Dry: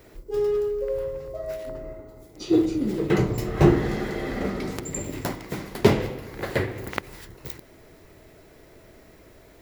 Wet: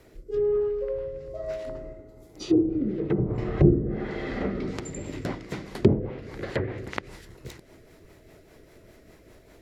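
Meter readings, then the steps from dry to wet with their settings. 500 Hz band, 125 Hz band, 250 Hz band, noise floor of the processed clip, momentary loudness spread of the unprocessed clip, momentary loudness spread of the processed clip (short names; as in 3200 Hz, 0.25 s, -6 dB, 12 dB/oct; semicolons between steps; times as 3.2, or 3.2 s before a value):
-2.0 dB, -0.5 dB, -1.5 dB, -54 dBFS, 18 LU, 19 LU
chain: treble ducked by the level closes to 410 Hz, closed at -16.5 dBFS; rotary speaker horn 1.1 Hz, later 5 Hz, at 4.35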